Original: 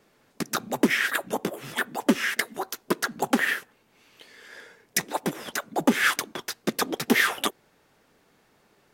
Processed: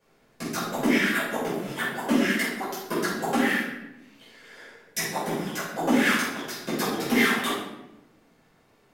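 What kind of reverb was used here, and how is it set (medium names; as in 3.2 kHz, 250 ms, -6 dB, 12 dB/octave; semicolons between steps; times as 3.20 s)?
simulated room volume 350 m³, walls mixed, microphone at 5.2 m; trim -12.5 dB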